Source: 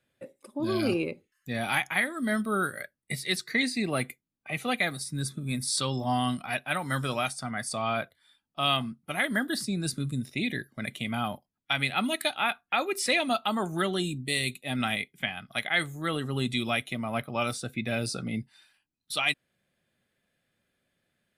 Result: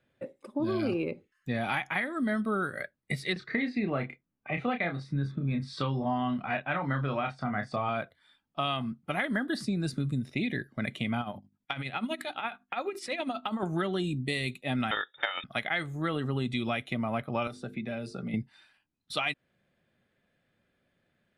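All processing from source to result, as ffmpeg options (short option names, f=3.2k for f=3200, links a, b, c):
-filter_complex "[0:a]asettb=1/sr,asplit=3[a][b][c];[a]atrim=end=3.334[d];[b]atrim=start=3.33:end=7.89,asetpts=PTS-STARTPTS,afade=t=in:d=0.004:c=qsin,afade=t=out:st=4.556:d=0.004:c=qsin,lowpass=2.7k,asplit=2[e][f];[f]adelay=29,volume=-6dB[g];[e][g]amix=inputs=2:normalize=0,atrim=end_sample=201096[h];[c]atrim=start=7.886[i];[d][h]acrossfade=d=0.004:c1=hsin:c2=qsin[j];[j][i]acrossfade=d=0.004:c1=qsin:c2=hsin,asettb=1/sr,asplit=3[k][l][m];[k]atrim=end=11.214[n];[l]atrim=start=11.21:end=13.63,asetpts=PTS-STARTPTS,afade=t=in:d=0.004:c=qsin,afade=t=out:st=2.416:d=0.004:c=qsin,acompressor=threshold=-30dB:ratio=3:attack=3.2:release=140:knee=1:detection=peak,bandreject=f=50:t=h:w=6,bandreject=f=100:t=h:w=6,bandreject=f=150:t=h:w=6,bandreject=f=200:t=h:w=6,bandreject=f=250:t=h:w=6,bandreject=f=300:t=h:w=6,bandreject=f=350:t=h:w=6,tremolo=f=12:d=0.67[o];[m]atrim=start=13.626[p];[n][o]acrossfade=d=0.004:c1=hsin:c2=qsin[q];[q][p]acrossfade=d=0.004:c1=qsin:c2=hsin,asettb=1/sr,asplit=3[r][s][t];[r]atrim=end=14.914[u];[s]atrim=start=14.91:end=15.44,asetpts=PTS-STARTPTS,afade=t=in:d=0.004:c=qsin,afade=t=out:st=0.526:d=0.004:c=qsin,equalizer=f=820:t=o:w=0.23:g=4.5,acontrast=33,lowpass=f=3.2k:t=q:w=0.5098,lowpass=f=3.2k:t=q:w=0.6013,lowpass=f=3.2k:t=q:w=0.9,lowpass=f=3.2k:t=q:w=2.563,afreqshift=-3800[v];[t]atrim=start=15.436[w];[u][v]acrossfade=d=0.004:c1=hsin:c2=qsin[x];[x][w]acrossfade=d=0.004:c1=qsin:c2=hsin,asettb=1/sr,asplit=3[y][z][aa];[y]atrim=end=17.474[ab];[z]atrim=start=17.47:end=18.34,asetpts=PTS-STARTPTS,afade=t=in:d=0.004:c=qsin,afade=t=out:st=0.866:d=0.004:c=qsin,bandreject=f=50:t=h:w=6,bandreject=f=100:t=h:w=6,bandreject=f=150:t=h:w=6,bandreject=f=200:t=h:w=6,bandreject=f=250:t=h:w=6,bandreject=f=300:t=h:w=6,bandreject=f=350:t=h:w=6,bandreject=f=400:t=h:w=6,bandreject=f=450:t=h:w=6,aecho=1:1:5:0.32,atrim=end_sample=38367,acrossover=split=130|1200[ac][ad][ae];[ac]acompressor=threshold=-55dB:ratio=4[af];[ad]acompressor=threshold=-40dB:ratio=4[ag];[ae]acompressor=threshold=-47dB:ratio=4[ah];[af][ag][ah]amix=inputs=3:normalize=0[ai];[aa]atrim=start=18.336[aj];[ab][ai]acrossfade=d=0.004:c1=hsin:c2=qsin[ak];[ak][aj]acrossfade=d=0.004:c1=qsin:c2=hsin,aemphasis=mode=reproduction:type=75fm,acompressor=threshold=-30dB:ratio=6,volume=3.5dB"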